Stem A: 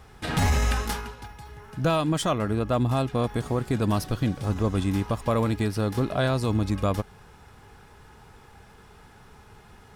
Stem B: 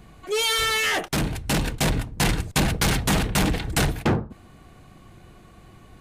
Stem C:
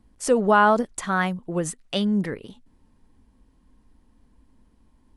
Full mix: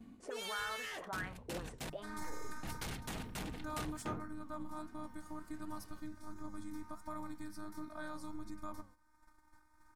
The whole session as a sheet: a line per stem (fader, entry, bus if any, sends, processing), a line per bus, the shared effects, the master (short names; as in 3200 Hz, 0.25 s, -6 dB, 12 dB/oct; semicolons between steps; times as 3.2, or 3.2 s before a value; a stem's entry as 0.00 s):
-0.5 dB, 1.80 s, bus A, no send, robotiser 307 Hz; fixed phaser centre 1200 Hz, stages 4
-13.5 dB, 0.00 s, muted 1.9–2.63, no bus, no send, auto duck -8 dB, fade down 0.25 s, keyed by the third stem
-2.0 dB, 0.00 s, bus A, no send, auto-wah 230–1700 Hz, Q 4.6, up, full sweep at -18 dBFS; fast leveller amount 50%
bus A: 0.0 dB, flange 1.4 Hz, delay 8.2 ms, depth 8.9 ms, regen -78%; compressor 1.5:1, threshold -55 dBFS, peak gain reduction 10.5 dB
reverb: off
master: notches 50/100/150/200 Hz; gate -57 dBFS, range -10 dB